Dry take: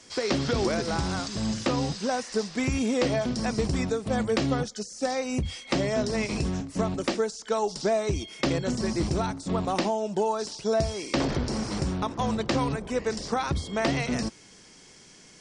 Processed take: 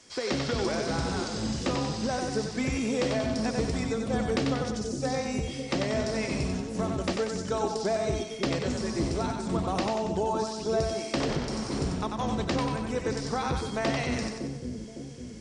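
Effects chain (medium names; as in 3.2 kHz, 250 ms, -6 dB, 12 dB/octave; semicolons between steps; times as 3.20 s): two-band feedback delay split 480 Hz, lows 557 ms, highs 93 ms, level -4 dB; trim -3.5 dB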